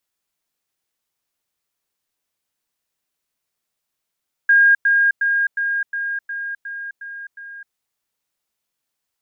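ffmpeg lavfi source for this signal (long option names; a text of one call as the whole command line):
ffmpeg -f lavfi -i "aevalsrc='pow(10,(-9-3*floor(t/0.36))/20)*sin(2*PI*1620*t)*clip(min(mod(t,0.36),0.26-mod(t,0.36))/0.005,0,1)':duration=3.24:sample_rate=44100" out.wav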